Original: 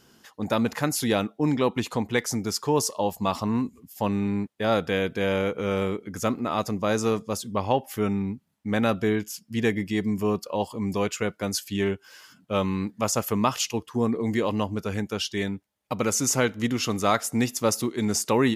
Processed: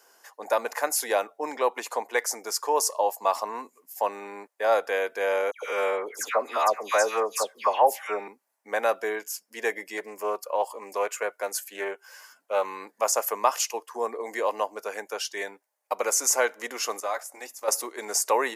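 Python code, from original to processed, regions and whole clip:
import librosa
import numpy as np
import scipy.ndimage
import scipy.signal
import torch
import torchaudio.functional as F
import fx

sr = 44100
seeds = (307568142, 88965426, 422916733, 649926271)

y = fx.chain(x, sr, fx.peak_eq(hz=2500.0, db=5.5, octaves=2.8),
    fx.dispersion(late='lows', ms=121.0, hz=1900.0), at=(5.51, 8.28))
y = fx.chain(y, sr, fx.highpass(hz=150.0, slope=6),
    fx.dynamic_eq(hz=5100.0, q=1.6, threshold_db=-48.0, ratio=4.0, max_db=-7),
    fx.doppler_dist(depth_ms=0.14), at=(9.97, 12.65))
y = fx.chain(y, sr, fx.notch(hz=390.0, q=8.0),
    fx.level_steps(step_db=14),
    fx.notch_comb(f0_hz=230.0), at=(17.0, 17.68))
y = scipy.signal.sosfilt(scipy.signal.butter(4, 530.0, 'highpass', fs=sr, output='sos'), y)
y = fx.peak_eq(y, sr, hz=3400.0, db=-12.5, octaves=1.0)
y = fx.notch(y, sr, hz=1300.0, q=11.0)
y = y * 10.0 ** (4.5 / 20.0)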